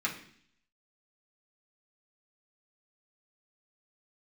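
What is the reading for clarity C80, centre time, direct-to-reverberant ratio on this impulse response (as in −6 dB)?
13.0 dB, 19 ms, −5.0 dB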